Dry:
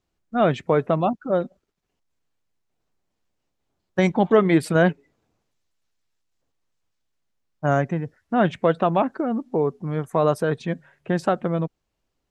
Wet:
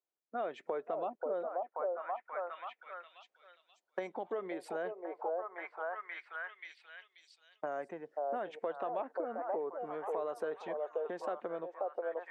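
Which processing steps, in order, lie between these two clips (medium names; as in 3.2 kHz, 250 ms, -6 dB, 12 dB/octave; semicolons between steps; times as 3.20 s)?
gate -41 dBFS, range -12 dB; level rider gain up to 11.5 dB; peak limiter -6.5 dBFS, peak gain reduction 5.5 dB; repeats whose band climbs or falls 533 ms, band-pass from 620 Hz, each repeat 0.7 oct, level -3 dB; compression 6:1, threshold -30 dBFS, peak gain reduction 17.5 dB; ladder high-pass 330 Hz, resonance 20%; treble shelf 2.8 kHz -10 dB; trim +1 dB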